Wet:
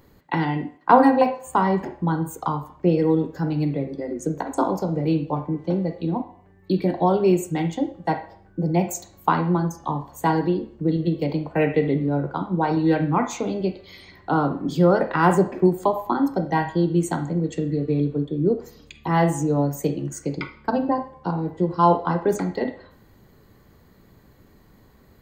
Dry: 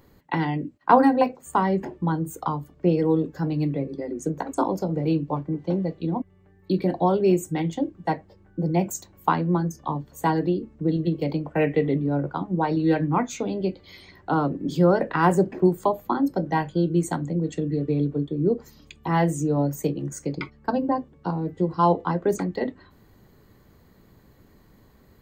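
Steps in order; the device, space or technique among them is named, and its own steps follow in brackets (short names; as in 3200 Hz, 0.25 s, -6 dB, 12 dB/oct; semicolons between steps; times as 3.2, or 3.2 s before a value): filtered reverb send (on a send: HPF 510 Hz + LPF 4000 Hz 12 dB/oct + reverb RT60 0.55 s, pre-delay 33 ms, DRR 7.5 dB); on the sum: gain +1.5 dB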